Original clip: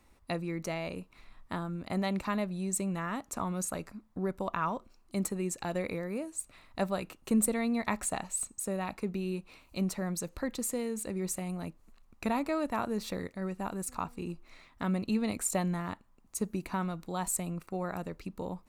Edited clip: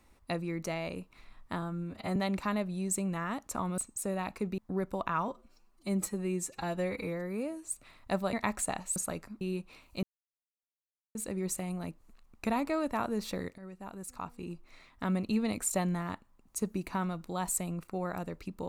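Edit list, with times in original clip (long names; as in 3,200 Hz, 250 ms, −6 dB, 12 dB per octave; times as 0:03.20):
0:01.62–0:01.98: time-stretch 1.5×
0:03.60–0:04.05: swap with 0:08.40–0:09.20
0:04.75–0:06.33: time-stretch 1.5×
0:07.01–0:07.77: remove
0:09.82–0:10.94: silence
0:13.37–0:14.82: fade in, from −12.5 dB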